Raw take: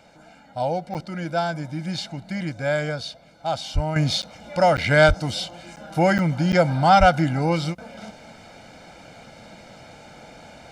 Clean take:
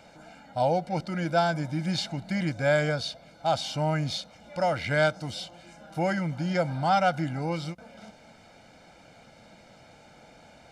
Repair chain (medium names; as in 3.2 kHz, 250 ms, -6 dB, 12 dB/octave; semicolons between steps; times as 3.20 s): 3.74–3.86 s: high-pass 140 Hz 24 dB/octave; 5.07–5.19 s: high-pass 140 Hz 24 dB/octave; 6.99–7.11 s: high-pass 140 Hz 24 dB/octave; interpolate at 0.94/4.22/4.77/5.76/6.18/6.52 s, 8.9 ms; trim 0 dB, from 3.96 s -8.5 dB